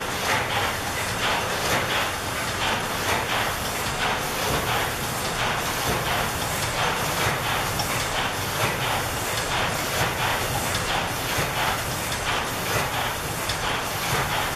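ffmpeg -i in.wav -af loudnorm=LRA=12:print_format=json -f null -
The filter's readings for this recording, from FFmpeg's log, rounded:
"input_i" : "-24.2",
"input_tp" : "-9.2",
"input_lra" : "0.8",
"input_thresh" : "-34.2",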